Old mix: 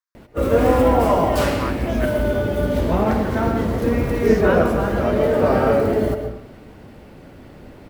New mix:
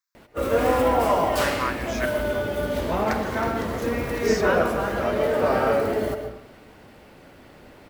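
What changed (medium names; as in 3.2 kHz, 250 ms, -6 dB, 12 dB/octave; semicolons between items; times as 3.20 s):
speech: add treble shelf 2.2 kHz +10.5 dB; background: add bass shelf 440 Hz -10.5 dB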